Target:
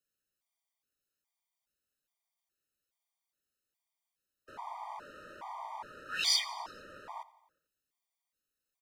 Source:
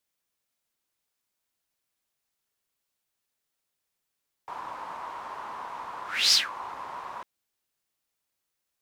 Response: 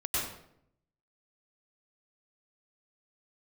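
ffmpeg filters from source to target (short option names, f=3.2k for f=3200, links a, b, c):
-af "aecho=1:1:88|176|264|352|440:0.112|0.0662|0.0391|0.023|0.0136,afreqshift=-60,afftfilt=real='re*gt(sin(2*PI*1.2*pts/sr)*(1-2*mod(floor(b*sr/1024/620),2)),0)':imag='im*gt(sin(2*PI*1.2*pts/sr)*(1-2*mod(floor(b*sr/1024/620),2)),0)':win_size=1024:overlap=0.75,volume=-4dB"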